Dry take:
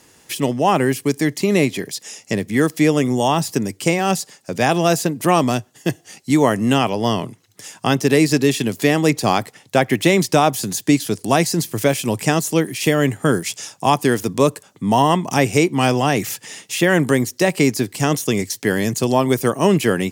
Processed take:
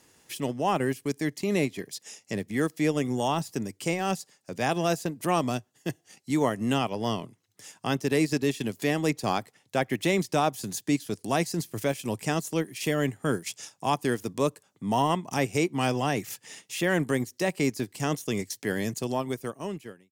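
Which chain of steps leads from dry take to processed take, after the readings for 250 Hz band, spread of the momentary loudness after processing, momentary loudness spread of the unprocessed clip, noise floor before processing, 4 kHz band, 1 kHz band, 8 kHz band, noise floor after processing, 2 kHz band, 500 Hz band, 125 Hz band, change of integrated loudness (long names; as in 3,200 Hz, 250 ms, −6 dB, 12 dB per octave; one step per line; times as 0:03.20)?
−10.5 dB, 10 LU, 9 LU, −54 dBFS, −10.5 dB, −10.0 dB, −12.0 dB, −70 dBFS, −10.5 dB, −10.5 dB, −10.5 dB, −10.5 dB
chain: fade-out on the ending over 1.31 s
transient designer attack −3 dB, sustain −7 dB
level −9 dB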